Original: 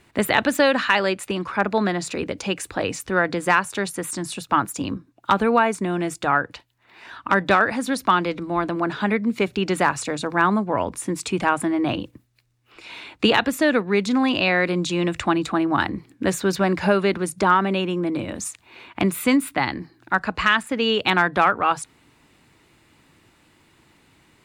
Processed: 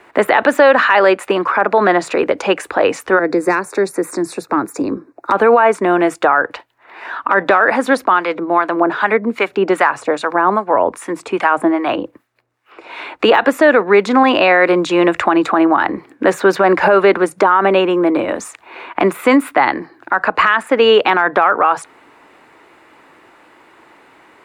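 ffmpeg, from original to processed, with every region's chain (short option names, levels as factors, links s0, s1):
-filter_complex "[0:a]asettb=1/sr,asplit=3[s0][s1][s2];[s0]atrim=end=3.194[s3];[s1]atrim=start=3.19:end=5.32,asetpts=PTS-STARTPTS,afade=t=in:d=0.004:c=qsin,afade=t=out:st=2.126:d=0.004:c=qsin,equalizer=f=390:w=1.5:g=8.5,acrossover=split=310|3000[s4][s5][s6];[s5]acompressor=threshold=0.00631:ratio=2:attack=3.2:release=140:knee=2.83:detection=peak[s7];[s4][s7][s6]amix=inputs=3:normalize=0,asuperstop=centerf=3100:order=4:qfactor=2.2[s8];[s2]atrim=start=5.316[s9];[s3][s8]acrossfade=d=0.004:c1=hsin:c2=qsin[s10];[s10][s9]acrossfade=d=0.004:c1=qsin:c2=hsin,asettb=1/sr,asplit=3[s11][s12][s13];[s11]atrim=end=8.044[s14];[s12]atrim=start=8.04:end=12.99,asetpts=PTS-STARTPTS,afade=t=in:d=0.004:c=qsin,afade=t=out:st=4.946:d=0.004:c=qsin,highpass=50,acrossover=split=950[s15][s16];[s15]aeval=exprs='val(0)*(1-0.7/2+0.7/2*cos(2*PI*2.5*n/s))':c=same[s17];[s16]aeval=exprs='val(0)*(1-0.7/2-0.7/2*cos(2*PI*2.5*n/s))':c=same[s18];[s17][s18]amix=inputs=2:normalize=0[s19];[s13]atrim=start=12.986[s20];[s14][s19]acrossfade=d=0.004:c1=hsin:c2=qsin[s21];[s21][s20]acrossfade=d=0.004:c1=qsin:c2=hsin,deesser=0.5,acrossover=split=350 2000:gain=0.0708 1 0.158[s22][s23][s24];[s22][s23][s24]amix=inputs=3:normalize=0,alimiter=level_in=7.5:limit=0.891:release=50:level=0:latency=1,volume=0.891"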